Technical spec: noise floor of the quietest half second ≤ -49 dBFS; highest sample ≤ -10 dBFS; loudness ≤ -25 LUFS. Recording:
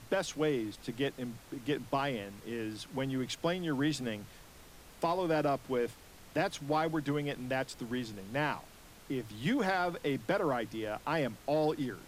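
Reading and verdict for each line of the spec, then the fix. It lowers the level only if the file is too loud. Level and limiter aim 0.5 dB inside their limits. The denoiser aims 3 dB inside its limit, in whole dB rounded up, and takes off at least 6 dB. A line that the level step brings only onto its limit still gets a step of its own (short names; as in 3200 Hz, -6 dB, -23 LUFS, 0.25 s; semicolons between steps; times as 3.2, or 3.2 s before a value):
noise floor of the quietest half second -54 dBFS: OK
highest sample -18.5 dBFS: OK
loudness -34.5 LUFS: OK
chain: none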